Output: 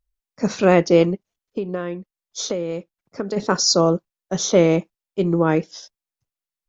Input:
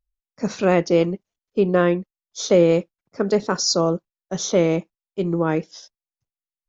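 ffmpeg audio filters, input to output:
-filter_complex "[0:a]asplit=3[s0][s1][s2];[s0]afade=t=out:st=1.14:d=0.02[s3];[s1]acompressor=threshold=0.0447:ratio=5,afade=t=in:st=1.14:d=0.02,afade=t=out:st=3.36:d=0.02[s4];[s2]afade=t=in:st=3.36:d=0.02[s5];[s3][s4][s5]amix=inputs=3:normalize=0,volume=1.41"

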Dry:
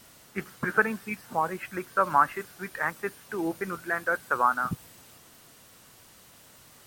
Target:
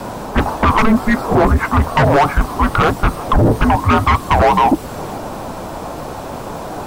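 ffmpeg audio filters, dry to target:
-filter_complex "[0:a]asplit=2[s0][s1];[s1]highpass=f=720:p=1,volume=14.1,asoftclip=type=tanh:threshold=0.422[s2];[s0][s2]amix=inputs=2:normalize=0,lowpass=f=2300:p=1,volume=0.501,highshelf=f=1800:t=q:w=1.5:g=-12,acrossover=split=590|2200[s3][s4][s5];[s4]acompressor=threshold=0.0224:ratio=6[s6];[s3][s6][s5]amix=inputs=3:normalize=0,afreqshift=-440,aeval=exprs='0.282*sin(PI/2*3.55*val(0)/0.282)':c=same,volume=1.58"

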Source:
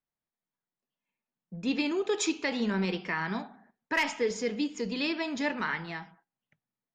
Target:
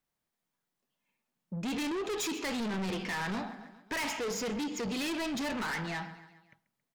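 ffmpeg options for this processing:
-af "acontrast=75,asoftclip=type=hard:threshold=0.075,aecho=1:1:137|274|411|548:0.1|0.054|0.0292|0.0157,asoftclip=type=tanh:threshold=0.0251"

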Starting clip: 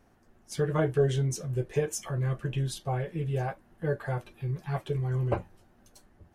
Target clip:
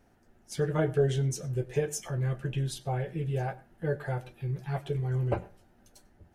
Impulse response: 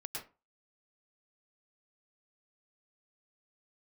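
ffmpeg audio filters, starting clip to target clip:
-filter_complex "[0:a]bandreject=f=1100:w=7.4,asplit=2[s0][s1];[1:a]atrim=start_sample=2205,asetrate=48510,aresample=44100[s2];[s1][s2]afir=irnorm=-1:irlink=0,volume=0.15[s3];[s0][s3]amix=inputs=2:normalize=0,volume=0.841"

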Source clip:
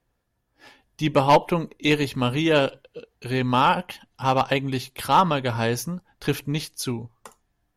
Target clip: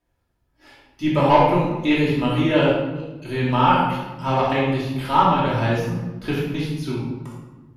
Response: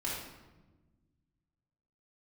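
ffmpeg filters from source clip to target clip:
-filter_complex "[0:a]acrossover=split=3600[s0][s1];[s1]acompressor=threshold=0.00631:ratio=4:attack=1:release=60[s2];[s0][s2]amix=inputs=2:normalize=0[s3];[1:a]atrim=start_sample=2205[s4];[s3][s4]afir=irnorm=-1:irlink=0,volume=0.794"

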